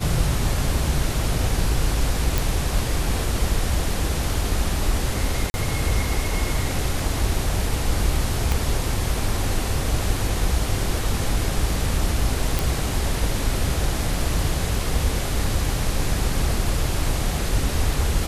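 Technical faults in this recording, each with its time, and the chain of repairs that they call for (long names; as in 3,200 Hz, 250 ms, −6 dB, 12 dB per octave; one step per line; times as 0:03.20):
0:02.38: click
0:05.50–0:05.54: drop-out 40 ms
0:08.52: click
0:12.59: click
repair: click removal
repair the gap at 0:05.50, 40 ms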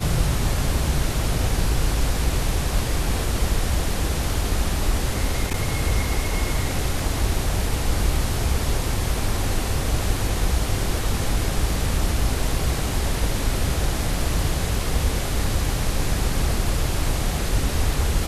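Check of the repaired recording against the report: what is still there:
0:08.52: click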